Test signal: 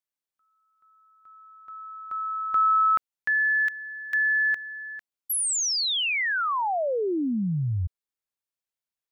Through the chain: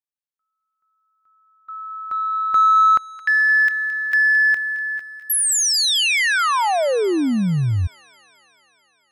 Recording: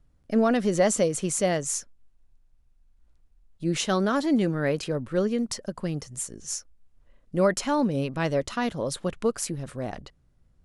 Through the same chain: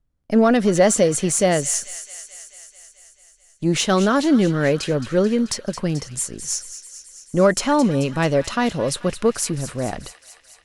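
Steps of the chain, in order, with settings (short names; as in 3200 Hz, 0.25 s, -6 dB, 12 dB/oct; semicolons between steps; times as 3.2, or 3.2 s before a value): gate -46 dBFS, range -17 dB; in parallel at -9.5 dB: soft clip -27 dBFS; on the sum: thin delay 0.218 s, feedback 70%, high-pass 1900 Hz, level -11.5 dB; gain +5.5 dB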